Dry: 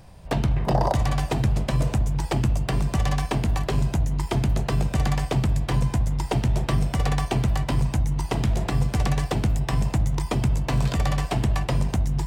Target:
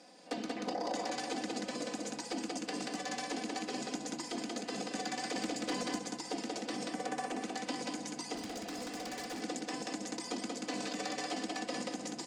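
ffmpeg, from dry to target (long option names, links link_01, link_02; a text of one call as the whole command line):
ffmpeg -i in.wav -filter_complex "[0:a]asettb=1/sr,asplit=3[link_01][link_02][link_03];[link_01]atrim=end=6.894[link_04];[link_02]atrim=start=6.89:end=7.43,asetpts=PTS-STARTPTS,afade=type=in:duration=0.004:curve=qsin,afade=type=out:start_time=0.536:duration=0.004:curve=qsin,equalizer=frequency=4200:width=0.81:gain=-10.5[link_05];[link_03]atrim=start=7.426[link_06];[link_04][link_05]acrossfade=duration=0.004:curve1=hsin:curve2=qsin[link_07];[link_07][link_06]acrossfade=duration=0.004:curve1=qsin:curve2=hsin,aecho=1:1:183|366|549|732:0.501|0.15|0.0451|0.0135,asettb=1/sr,asplit=3[link_08][link_09][link_10];[link_08]atrim=end=5.354[link_11];[link_09]atrim=start=5.35:end=5.99,asetpts=PTS-STARTPTS,afade=type=in:duration=0.004:curve=qsin,afade=type=out:start_time=0.636:duration=0.004:curve=qsin,acontrast=75[link_12];[link_10]atrim=start=5.986[link_13];[link_11][link_12]acrossfade=duration=0.004:curve1=hsin:curve2=qsin[link_14];[link_14][link_13]acrossfade=duration=0.004:curve1=qsin:curve2=hsin,highpass=frequency=260:width=0.5412,highpass=frequency=260:width=1.3066,equalizer=frequency=330:width_type=q:width=4:gain=6,equalizer=frequency=1000:width_type=q:width=4:gain=-7,equalizer=frequency=4700:width_type=q:width=4:gain=8,equalizer=frequency=6700:width_type=q:width=4:gain=6,lowpass=frequency=9400:width=0.5412,lowpass=frequency=9400:width=1.3066,asoftclip=type=tanh:threshold=-13.5dB,alimiter=limit=-24dB:level=0:latency=1:release=100,aecho=1:1:4:0.86,asettb=1/sr,asplit=3[link_15][link_16][link_17];[link_15]atrim=end=8.354[link_18];[link_16]atrim=start=8.35:end=9.41,asetpts=PTS-STARTPTS,afade=type=in:duration=0.004:curve=qsin,afade=type=out:start_time=1.056:duration=0.004:curve=qsin,volume=32dB,asoftclip=hard,volume=-32dB[link_19];[link_17]atrim=start=9.406[link_20];[link_18][link_19]acrossfade=duration=0.004:curve1=hsin:curve2=qsin[link_21];[link_21][link_20]acrossfade=duration=0.004:curve1=qsin:curve2=hsin,volume=-6dB" out.wav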